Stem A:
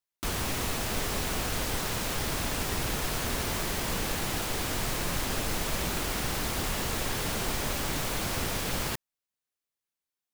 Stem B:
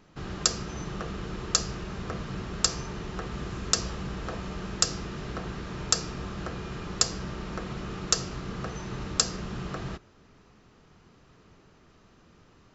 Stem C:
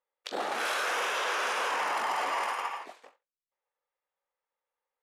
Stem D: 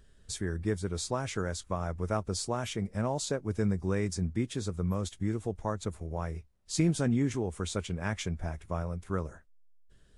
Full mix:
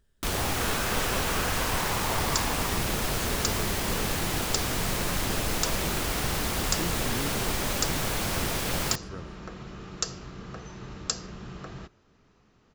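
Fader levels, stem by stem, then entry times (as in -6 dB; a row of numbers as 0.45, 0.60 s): +2.0, -5.5, -3.0, -9.0 dB; 0.00, 1.90, 0.00, 0.00 s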